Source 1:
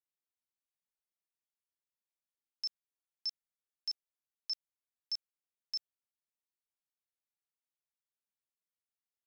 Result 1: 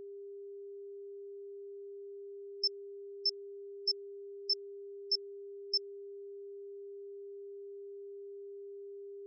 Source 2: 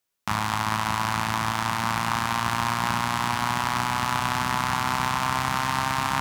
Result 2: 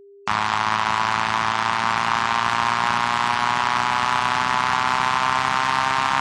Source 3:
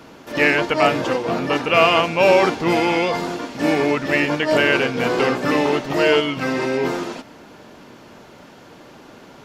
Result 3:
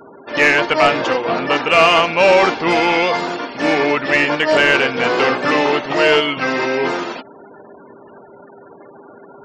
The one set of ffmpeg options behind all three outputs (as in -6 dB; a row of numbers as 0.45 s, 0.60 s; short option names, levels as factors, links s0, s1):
-filter_complex "[0:a]afftfilt=real='re*gte(hypot(re,im),0.0126)':imag='im*gte(hypot(re,im),0.0126)':win_size=1024:overlap=0.75,asplit=2[s0][s1];[s1]highpass=f=720:p=1,volume=3.98,asoftclip=type=tanh:threshold=0.841[s2];[s0][s2]amix=inputs=2:normalize=0,lowpass=f=5300:p=1,volume=0.501,aeval=exprs='val(0)+0.00631*sin(2*PI*400*n/s)':c=same"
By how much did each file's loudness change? +0.5 LU, +5.0 LU, +3.5 LU